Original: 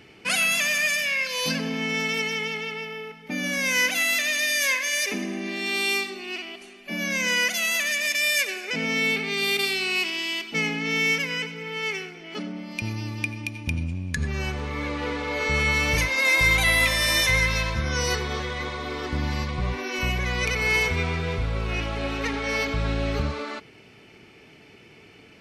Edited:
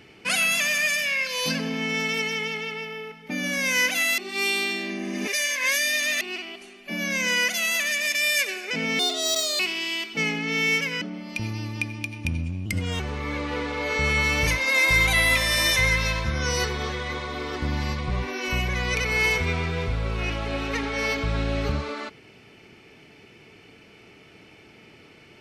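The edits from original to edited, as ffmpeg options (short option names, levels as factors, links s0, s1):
-filter_complex "[0:a]asplit=8[s0][s1][s2][s3][s4][s5][s6][s7];[s0]atrim=end=4.182[s8];[s1]atrim=start=4.178:end=6.212,asetpts=PTS-STARTPTS,areverse[s9];[s2]atrim=start=6.208:end=8.994[s10];[s3]atrim=start=8.99:end=9.97,asetpts=PTS-STARTPTS,asetrate=71442,aresample=44100[s11];[s4]atrim=start=9.966:end=11.392[s12];[s5]atrim=start=12.438:end=14.084[s13];[s6]atrim=start=14.08:end=14.5,asetpts=PTS-STARTPTS,asetrate=54243,aresample=44100[s14];[s7]atrim=start=14.496[s15];[s8][s9]acrossfade=d=0.004:c1=hsin:c2=hsin[s16];[s16][s10]acrossfade=d=0.004:c1=hsin:c2=hsin[s17];[s17][s11]acrossfade=d=0.004:c1=hsin:c2=hsin[s18];[s18][s12]acrossfade=d=0.004:c1=hsin:c2=hsin[s19];[s19][s13]acrossfade=d=0.004:c1=hsin:c2=hsin[s20];[s20][s14]acrossfade=d=0.004:c1=hsin:c2=hsin[s21];[s21][s15]acrossfade=d=0.004:c1=hsin:c2=hsin"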